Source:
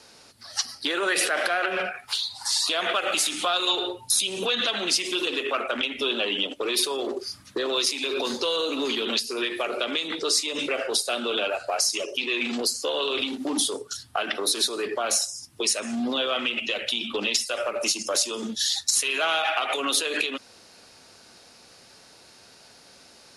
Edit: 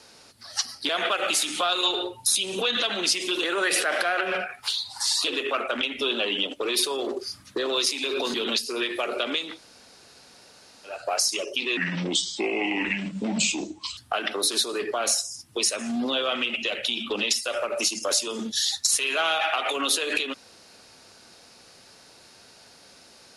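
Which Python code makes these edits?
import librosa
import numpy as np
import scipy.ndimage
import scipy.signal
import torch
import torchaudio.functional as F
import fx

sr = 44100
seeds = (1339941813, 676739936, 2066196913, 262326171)

y = fx.edit(x, sr, fx.move(start_s=0.89, length_s=1.84, to_s=5.28),
    fx.cut(start_s=8.34, length_s=0.61),
    fx.room_tone_fill(start_s=10.1, length_s=1.46, crossfade_s=0.24),
    fx.speed_span(start_s=12.38, length_s=1.63, speed=0.74), tone=tone)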